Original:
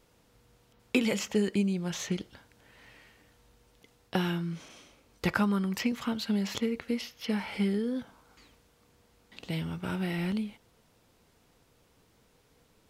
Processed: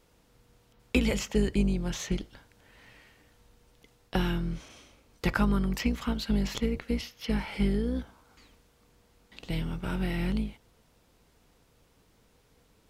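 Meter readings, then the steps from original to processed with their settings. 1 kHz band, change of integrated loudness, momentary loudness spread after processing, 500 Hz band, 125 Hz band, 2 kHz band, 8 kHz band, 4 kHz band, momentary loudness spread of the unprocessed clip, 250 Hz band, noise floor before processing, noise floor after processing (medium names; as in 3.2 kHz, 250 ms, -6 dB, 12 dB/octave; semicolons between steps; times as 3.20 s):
0.0 dB, +1.0 dB, 9 LU, 0.0 dB, +3.0 dB, 0.0 dB, 0.0 dB, 0.0 dB, 8 LU, 0.0 dB, -66 dBFS, -65 dBFS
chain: octave divider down 2 oct, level -1 dB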